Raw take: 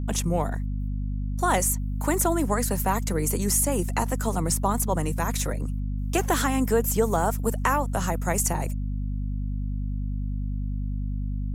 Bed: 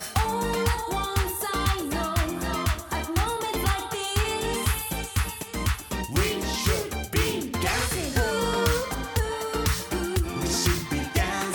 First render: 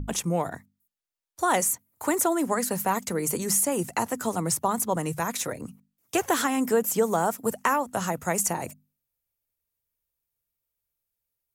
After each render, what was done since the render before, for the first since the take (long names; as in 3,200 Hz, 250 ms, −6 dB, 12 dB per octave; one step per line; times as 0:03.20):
mains-hum notches 50/100/150/200/250 Hz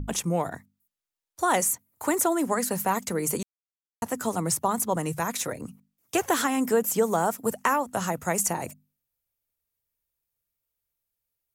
0:03.43–0:04.02: silence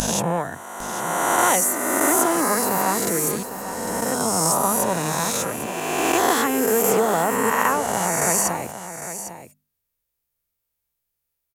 peak hold with a rise ahead of every peak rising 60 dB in 2.30 s
on a send: single-tap delay 803 ms −11.5 dB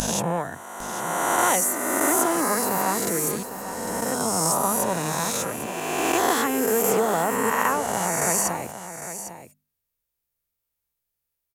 level −2.5 dB